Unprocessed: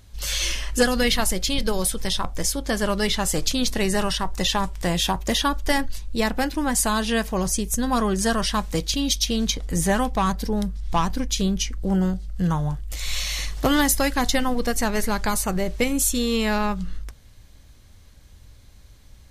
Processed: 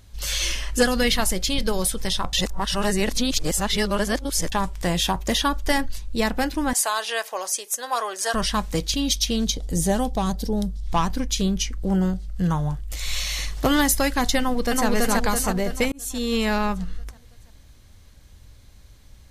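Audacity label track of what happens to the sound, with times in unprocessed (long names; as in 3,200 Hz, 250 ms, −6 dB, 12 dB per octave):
2.330000	4.520000	reverse
6.730000	8.340000	high-pass filter 520 Hz 24 dB per octave
9.440000	10.870000	flat-topped bell 1,600 Hz −8.5 dB
14.380000	14.860000	delay throw 330 ms, feedback 55%, level −0.5 dB
15.920000	16.360000	fade in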